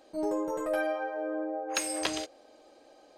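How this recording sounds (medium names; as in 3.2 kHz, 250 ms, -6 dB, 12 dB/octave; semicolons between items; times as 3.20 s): noise floor -58 dBFS; spectral tilt -1.5 dB/octave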